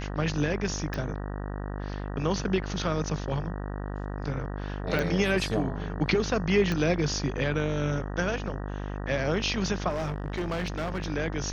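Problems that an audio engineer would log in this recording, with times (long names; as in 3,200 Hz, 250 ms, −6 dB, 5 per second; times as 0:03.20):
mains buzz 50 Hz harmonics 38 −34 dBFS
0:00.94: click
0:04.99: click
0:06.72: click −17 dBFS
0:09.89–0:11.06: clipping −26.5 dBFS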